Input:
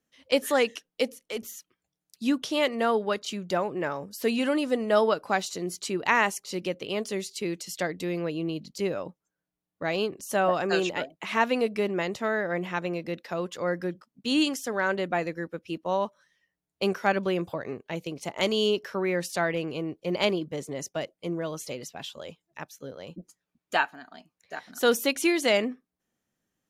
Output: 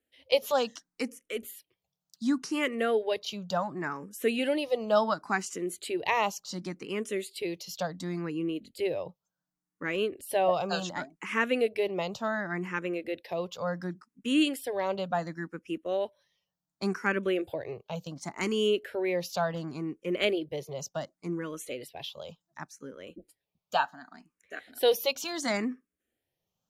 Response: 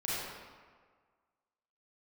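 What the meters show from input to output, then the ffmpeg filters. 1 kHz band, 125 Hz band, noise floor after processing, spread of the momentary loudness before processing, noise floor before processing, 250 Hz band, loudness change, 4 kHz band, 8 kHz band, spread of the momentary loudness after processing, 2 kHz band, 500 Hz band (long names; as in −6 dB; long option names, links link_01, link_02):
−3.0 dB, −3.0 dB, below −85 dBFS, 13 LU, below −85 dBFS, −3.0 dB, −3.0 dB, −3.5 dB, −4.0 dB, 13 LU, −4.0 dB, −2.5 dB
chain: -filter_complex "[0:a]asplit=2[link_01][link_02];[link_02]afreqshift=0.69[link_03];[link_01][link_03]amix=inputs=2:normalize=1"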